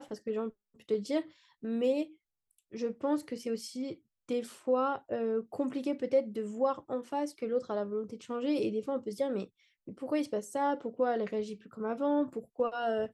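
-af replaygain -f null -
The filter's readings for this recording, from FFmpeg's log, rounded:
track_gain = +13.1 dB
track_peak = 0.095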